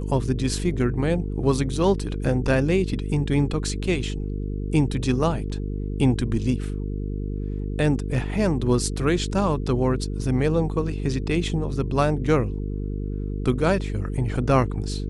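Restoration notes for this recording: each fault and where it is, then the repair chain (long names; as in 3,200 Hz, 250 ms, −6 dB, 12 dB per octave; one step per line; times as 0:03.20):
mains buzz 50 Hz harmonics 9 −28 dBFS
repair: hum removal 50 Hz, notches 9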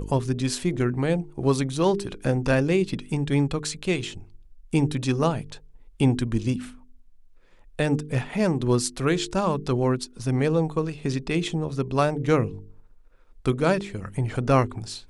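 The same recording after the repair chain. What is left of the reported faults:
none of them is left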